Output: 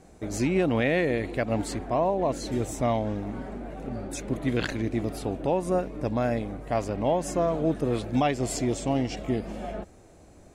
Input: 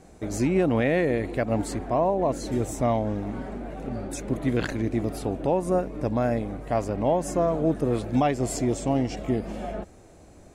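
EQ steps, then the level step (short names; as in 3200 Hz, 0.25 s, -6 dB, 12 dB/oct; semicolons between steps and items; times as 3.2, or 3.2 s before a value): dynamic EQ 3400 Hz, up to +6 dB, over -45 dBFS, Q 0.81; -2.0 dB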